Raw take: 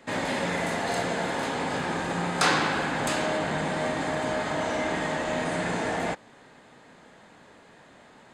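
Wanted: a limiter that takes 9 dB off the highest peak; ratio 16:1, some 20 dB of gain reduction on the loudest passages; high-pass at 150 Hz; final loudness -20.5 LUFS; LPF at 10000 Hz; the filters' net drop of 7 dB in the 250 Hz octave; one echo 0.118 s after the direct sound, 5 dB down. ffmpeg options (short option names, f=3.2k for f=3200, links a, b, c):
-af "highpass=150,lowpass=10k,equalizer=f=250:t=o:g=-8.5,acompressor=threshold=-39dB:ratio=16,alimiter=level_in=10.5dB:limit=-24dB:level=0:latency=1,volume=-10.5dB,aecho=1:1:118:0.562,volume=23dB"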